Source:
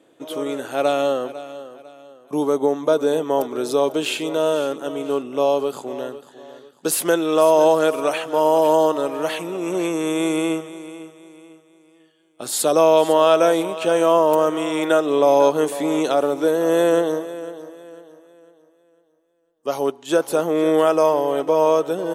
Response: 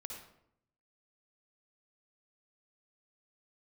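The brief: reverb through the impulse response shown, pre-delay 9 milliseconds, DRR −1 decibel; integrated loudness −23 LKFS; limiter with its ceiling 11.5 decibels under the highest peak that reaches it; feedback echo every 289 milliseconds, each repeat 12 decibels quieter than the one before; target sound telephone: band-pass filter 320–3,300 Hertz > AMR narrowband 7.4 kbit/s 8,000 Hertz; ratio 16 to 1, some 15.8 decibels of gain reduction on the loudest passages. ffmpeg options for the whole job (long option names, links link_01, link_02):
-filter_complex "[0:a]acompressor=threshold=-26dB:ratio=16,alimiter=level_in=2.5dB:limit=-24dB:level=0:latency=1,volume=-2.5dB,aecho=1:1:289|578|867:0.251|0.0628|0.0157,asplit=2[link_01][link_02];[1:a]atrim=start_sample=2205,adelay=9[link_03];[link_02][link_03]afir=irnorm=-1:irlink=0,volume=4dB[link_04];[link_01][link_04]amix=inputs=2:normalize=0,highpass=320,lowpass=3300,volume=11dB" -ar 8000 -c:a libopencore_amrnb -b:a 7400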